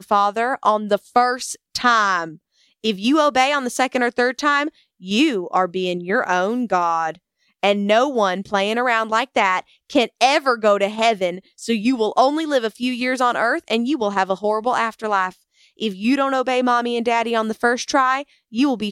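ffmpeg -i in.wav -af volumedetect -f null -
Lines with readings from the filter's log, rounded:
mean_volume: -19.7 dB
max_volume: -2.7 dB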